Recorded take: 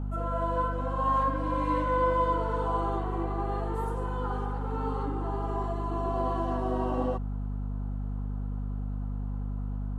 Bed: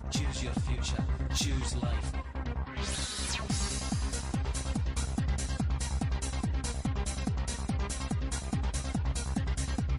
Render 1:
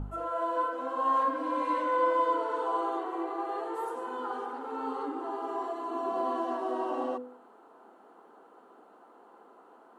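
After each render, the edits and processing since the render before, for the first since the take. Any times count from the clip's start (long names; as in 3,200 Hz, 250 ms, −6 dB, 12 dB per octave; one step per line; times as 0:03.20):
hum removal 50 Hz, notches 10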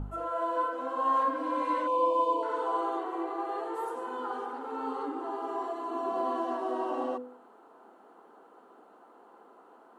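0:01.87–0:02.43: linear-phase brick-wall band-stop 1,100–2,300 Hz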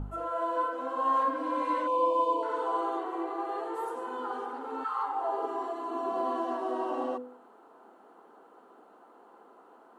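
0:04.83–0:05.45: high-pass with resonance 1,500 Hz → 440 Hz, resonance Q 3.2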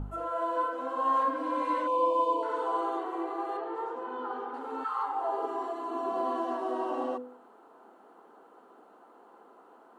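0:03.57–0:04.54: high-frequency loss of the air 170 metres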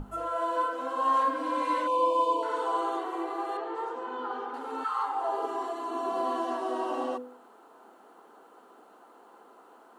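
high-shelf EQ 2,300 Hz +9.5 dB
mains-hum notches 50/100/150 Hz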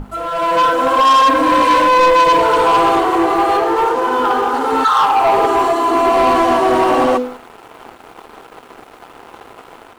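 leveller curve on the samples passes 3
automatic gain control gain up to 10 dB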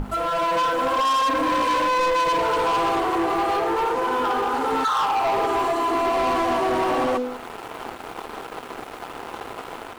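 downward compressor 2.5 to 1, threshold −27 dBFS, peak gain reduction 12 dB
leveller curve on the samples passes 1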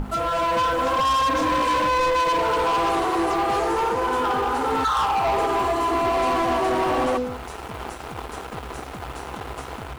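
mix in bed −7.5 dB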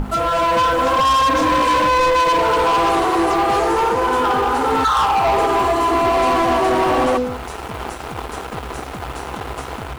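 level +5.5 dB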